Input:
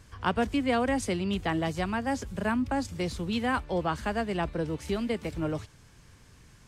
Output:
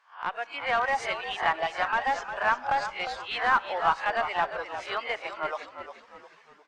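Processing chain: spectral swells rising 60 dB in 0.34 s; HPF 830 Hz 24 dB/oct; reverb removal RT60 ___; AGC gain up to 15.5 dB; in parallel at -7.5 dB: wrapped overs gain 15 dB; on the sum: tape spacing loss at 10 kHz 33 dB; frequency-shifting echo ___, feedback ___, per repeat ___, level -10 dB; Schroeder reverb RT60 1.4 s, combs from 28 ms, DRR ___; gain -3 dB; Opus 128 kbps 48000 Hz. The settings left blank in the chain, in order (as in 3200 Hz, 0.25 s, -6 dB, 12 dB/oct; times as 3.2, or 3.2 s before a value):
1.6 s, 0.354 s, 40%, -58 Hz, 19.5 dB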